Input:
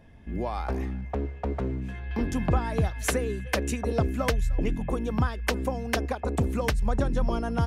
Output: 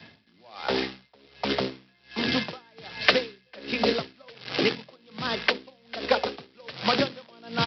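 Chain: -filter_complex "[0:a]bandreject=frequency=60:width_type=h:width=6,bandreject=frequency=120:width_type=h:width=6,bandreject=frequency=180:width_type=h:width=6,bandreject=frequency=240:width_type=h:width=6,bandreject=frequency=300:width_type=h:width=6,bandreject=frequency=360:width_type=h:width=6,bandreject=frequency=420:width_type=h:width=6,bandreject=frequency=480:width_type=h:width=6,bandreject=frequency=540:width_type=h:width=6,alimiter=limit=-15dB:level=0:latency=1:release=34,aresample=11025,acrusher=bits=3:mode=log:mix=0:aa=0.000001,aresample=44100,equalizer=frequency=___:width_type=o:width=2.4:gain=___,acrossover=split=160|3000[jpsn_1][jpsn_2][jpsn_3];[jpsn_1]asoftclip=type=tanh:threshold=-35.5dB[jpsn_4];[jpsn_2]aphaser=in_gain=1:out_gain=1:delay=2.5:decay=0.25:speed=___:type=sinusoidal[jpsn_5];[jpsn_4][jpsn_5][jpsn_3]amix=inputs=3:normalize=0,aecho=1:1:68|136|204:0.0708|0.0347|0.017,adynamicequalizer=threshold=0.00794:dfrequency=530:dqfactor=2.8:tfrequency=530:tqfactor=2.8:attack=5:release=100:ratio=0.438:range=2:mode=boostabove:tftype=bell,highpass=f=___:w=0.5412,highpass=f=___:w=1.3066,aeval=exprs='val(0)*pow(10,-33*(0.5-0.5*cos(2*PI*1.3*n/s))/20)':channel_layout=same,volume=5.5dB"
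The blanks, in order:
4k, 12, 0.55, 110, 110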